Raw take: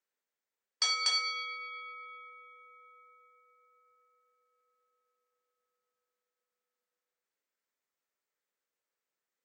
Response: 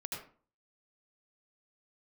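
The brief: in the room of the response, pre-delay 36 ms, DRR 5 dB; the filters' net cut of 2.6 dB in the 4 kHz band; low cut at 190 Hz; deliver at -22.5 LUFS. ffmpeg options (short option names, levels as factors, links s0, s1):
-filter_complex "[0:a]highpass=190,equalizer=f=4000:t=o:g=-3,asplit=2[s0][s1];[1:a]atrim=start_sample=2205,adelay=36[s2];[s1][s2]afir=irnorm=-1:irlink=0,volume=0.531[s3];[s0][s3]amix=inputs=2:normalize=0,volume=3.35"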